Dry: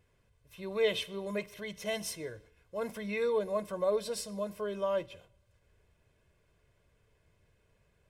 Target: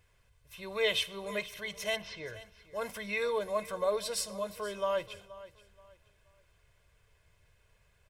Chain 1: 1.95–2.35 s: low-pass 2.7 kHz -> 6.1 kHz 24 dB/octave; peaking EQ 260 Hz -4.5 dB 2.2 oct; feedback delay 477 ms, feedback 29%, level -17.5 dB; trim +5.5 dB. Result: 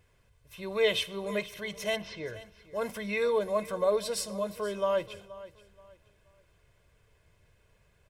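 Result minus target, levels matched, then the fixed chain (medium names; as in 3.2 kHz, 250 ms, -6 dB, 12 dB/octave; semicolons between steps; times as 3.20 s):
250 Hz band +4.0 dB
1.95–2.35 s: low-pass 2.7 kHz -> 6.1 kHz 24 dB/octave; peaking EQ 260 Hz -12.5 dB 2.2 oct; feedback delay 477 ms, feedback 29%, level -17.5 dB; trim +5.5 dB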